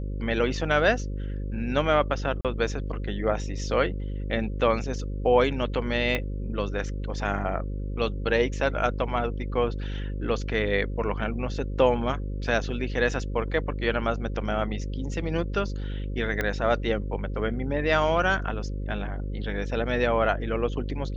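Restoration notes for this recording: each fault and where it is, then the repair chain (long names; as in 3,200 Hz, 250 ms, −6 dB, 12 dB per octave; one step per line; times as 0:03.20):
mains buzz 50 Hz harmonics 11 −31 dBFS
0:02.41–0:02.45: drop-out 37 ms
0:06.15: click −13 dBFS
0:16.41: click −13 dBFS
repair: click removal
hum removal 50 Hz, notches 11
repair the gap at 0:02.41, 37 ms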